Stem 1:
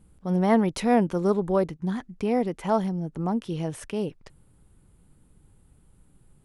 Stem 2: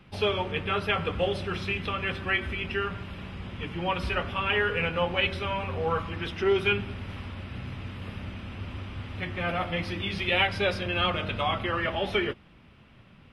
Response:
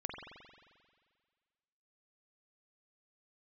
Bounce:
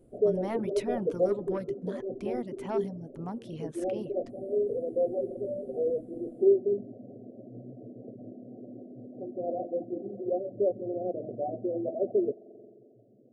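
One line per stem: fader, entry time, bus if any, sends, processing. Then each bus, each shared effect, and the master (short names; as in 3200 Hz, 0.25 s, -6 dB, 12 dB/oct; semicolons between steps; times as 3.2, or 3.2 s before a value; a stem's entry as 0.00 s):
-9.0 dB, 0.00 s, no send, de-hum 113.4 Hz, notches 13; soft clip -15.5 dBFS, distortion -15 dB
+1.5 dB, 0.00 s, send -7 dB, FFT band-pass 110–760 Hz; fixed phaser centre 400 Hz, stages 4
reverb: on, RT60 1.8 s, pre-delay 44 ms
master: reverb removal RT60 0.54 s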